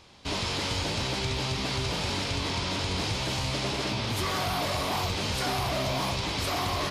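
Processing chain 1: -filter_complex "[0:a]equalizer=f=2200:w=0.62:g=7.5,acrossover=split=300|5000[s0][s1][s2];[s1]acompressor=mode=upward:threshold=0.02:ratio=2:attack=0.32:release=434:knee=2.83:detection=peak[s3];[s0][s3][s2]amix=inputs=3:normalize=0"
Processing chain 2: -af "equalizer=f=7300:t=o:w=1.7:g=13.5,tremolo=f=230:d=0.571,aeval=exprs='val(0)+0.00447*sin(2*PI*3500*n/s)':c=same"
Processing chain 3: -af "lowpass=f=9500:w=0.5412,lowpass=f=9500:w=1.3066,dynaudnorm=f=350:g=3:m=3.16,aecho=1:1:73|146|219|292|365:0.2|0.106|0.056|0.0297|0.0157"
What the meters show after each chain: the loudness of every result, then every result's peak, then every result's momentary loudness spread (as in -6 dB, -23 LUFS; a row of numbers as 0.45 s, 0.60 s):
-25.0 LUFS, -26.0 LUFS, -19.0 LUFS; -13.5 dBFS, -12.5 dBFS, -9.0 dBFS; 1 LU, 1 LU, 2 LU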